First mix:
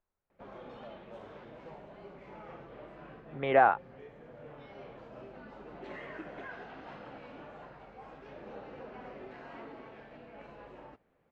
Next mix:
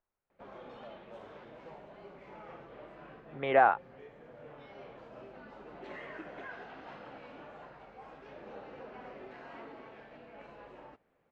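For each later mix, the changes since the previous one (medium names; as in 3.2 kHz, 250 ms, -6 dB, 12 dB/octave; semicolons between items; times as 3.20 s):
master: add bass shelf 260 Hz -5 dB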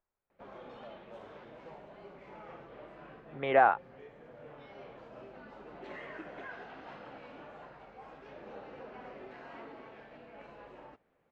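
no change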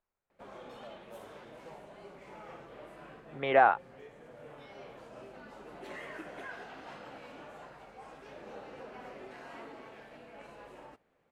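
master: remove distance through air 170 m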